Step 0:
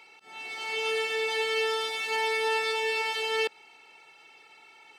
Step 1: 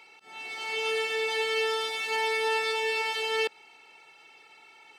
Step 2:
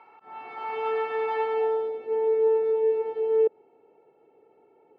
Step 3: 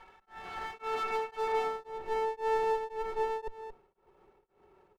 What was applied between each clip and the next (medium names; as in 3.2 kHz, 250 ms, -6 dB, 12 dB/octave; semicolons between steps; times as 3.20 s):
no audible change
low-pass sweep 1.1 kHz -> 470 Hz, 1.40–1.95 s; trim +2 dB
comb filter that takes the minimum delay 5.3 ms; delay 226 ms -19 dB; tremolo of two beating tones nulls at 1.9 Hz